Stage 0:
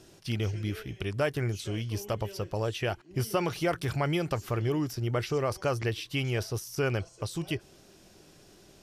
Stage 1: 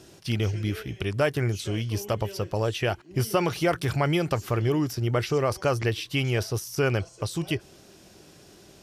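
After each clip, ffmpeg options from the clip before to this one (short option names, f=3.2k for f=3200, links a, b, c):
-af "highpass=41,volume=4.5dB"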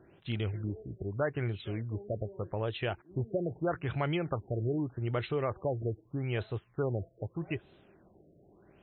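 -af "afftfilt=real='re*lt(b*sr/1024,690*pow(4200/690,0.5+0.5*sin(2*PI*0.81*pts/sr)))':imag='im*lt(b*sr/1024,690*pow(4200/690,0.5+0.5*sin(2*PI*0.81*pts/sr)))':win_size=1024:overlap=0.75,volume=-7.5dB"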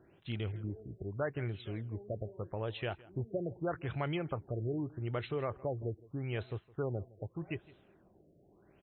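-af "aecho=1:1:163:0.0841,volume=-4dB"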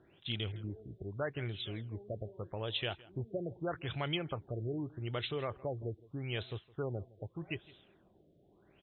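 -af "lowpass=f=3.5k:t=q:w=6.4,volume=-2dB"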